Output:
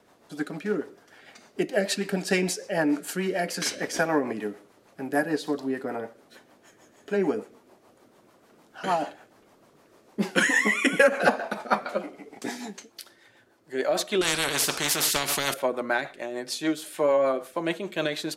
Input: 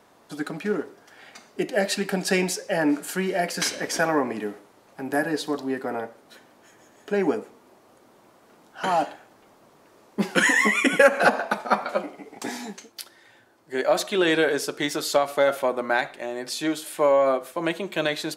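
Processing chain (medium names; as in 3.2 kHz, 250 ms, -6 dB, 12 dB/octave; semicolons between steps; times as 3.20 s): rotary cabinet horn 6.7 Hz; 14.21–15.54 s: spectrum-flattening compressor 4:1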